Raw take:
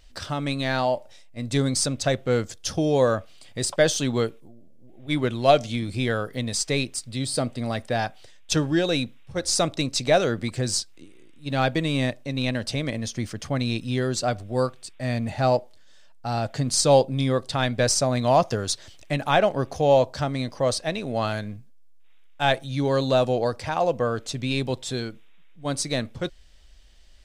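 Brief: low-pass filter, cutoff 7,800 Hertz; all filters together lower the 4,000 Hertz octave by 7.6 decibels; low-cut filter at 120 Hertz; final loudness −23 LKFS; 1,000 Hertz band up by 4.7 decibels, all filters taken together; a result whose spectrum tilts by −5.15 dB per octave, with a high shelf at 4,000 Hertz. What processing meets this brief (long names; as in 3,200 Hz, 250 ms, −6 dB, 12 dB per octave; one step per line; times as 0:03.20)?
high-pass filter 120 Hz
low-pass filter 7,800 Hz
parametric band 1,000 Hz +7.5 dB
high-shelf EQ 4,000 Hz −7 dB
parametric band 4,000 Hz −5 dB
level +0.5 dB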